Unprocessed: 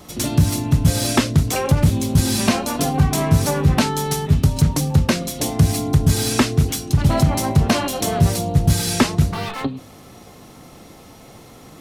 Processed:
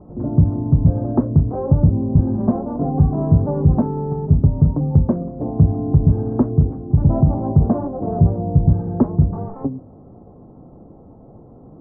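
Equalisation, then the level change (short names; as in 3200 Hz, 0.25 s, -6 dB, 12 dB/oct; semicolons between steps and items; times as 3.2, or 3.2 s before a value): Bessel low-pass 570 Hz, order 6; air absorption 91 m; +2.0 dB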